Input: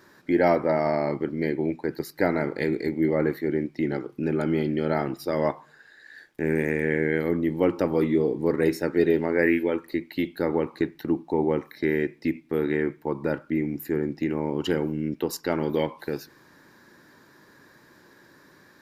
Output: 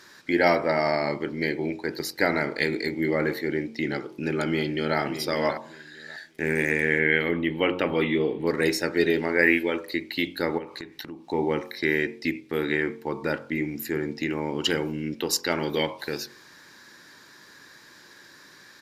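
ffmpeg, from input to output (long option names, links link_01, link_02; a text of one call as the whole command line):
ffmpeg -i in.wav -filter_complex "[0:a]asplit=2[link_01][link_02];[link_02]afade=type=in:start_time=4.46:duration=0.01,afade=type=out:start_time=4.98:duration=0.01,aecho=0:1:590|1180|1770:0.316228|0.0632456|0.0126491[link_03];[link_01][link_03]amix=inputs=2:normalize=0,asettb=1/sr,asplit=3[link_04][link_05][link_06];[link_04]atrim=end=6.994[link_07];[link_05]atrim=start=6.99:end=8.47,asetpts=PTS-STARTPTS,afade=type=in:duration=0.004:curve=qsin,afade=type=out:start_time=1.476:duration=0.004:curve=qsin,highshelf=frequency=4000:width_type=q:width=3:gain=-10[link_08];[link_06]atrim=start=8.466[link_09];[link_07][link_08]acrossfade=duration=0.004:curve1=hsin:curve2=qsin[link_10];[link_10][link_09]acrossfade=duration=0.004:curve1=qsin:curve2=hsin,asplit=3[link_11][link_12][link_13];[link_11]afade=type=out:start_time=10.57:duration=0.02[link_14];[link_12]acompressor=threshold=-37dB:ratio=3:attack=3.2:release=140:knee=1:detection=peak,afade=type=in:start_time=10.57:duration=0.02,afade=type=out:start_time=11.25:duration=0.02[link_15];[link_13]afade=type=in:start_time=11.25:duration=0.02[link_16];[link_14][link_15][link_16]amix=inputs=3:normalize=0,equalizer=frequency=4800:width=0.32:gain=14,bandreject=frequency=45.23:width_type=h:width=4,bandreject=frequency=90.46:width_type=h:width=4,bandreject=frequency=135.69:width_type=h:width=4,bandreject=frequency=180.92:width_type=h:width=4,bandreject=frequency=226.15:width_type=h:width=4,bandreject=frequency=271.38:width_type=h:width=4,bandreject=frequency=316.61:width_type=h:width=4,bandreject=frequency=361.84:width_type=h:width=4,bandreject=frequency=407.07:width_type=h:width=4,bandreject=frequency=452.3:width_type=h:width=4,bandreject=frequency=497.53:width_type=h:width=4,bandreject=frequency=542.76:width_type=h:width=4,bandreject=frequency=587.99:width_type=h:width=4,bandreject=frequency=633.22:width_type=h:width=4,bandreject=frequency=678.45:width_type=h:width=4,bandreject=frequency=723.68:width_type=h:width=4,bandreject=frequency=768.91:width_type=h:width=4,bandreject=frequency=814.14:width_type=h:width=4,bandreject=frequency=859.37:width_type=h:width=4,bandreject=frequency=904.6:width_type=h:width=4,bandreject=frequency=949.83:width_type=h:width=4,bandreject=frequency=995.06:width_type=h:width=4,bandreject=frequency=1040.29:width_type=h:width=4,bandreject=frequency=1085.52:width_type=h:width=4,bandreject=frequency=1130.75:width_type=h:width=4,volume=-2.5dB" out.wav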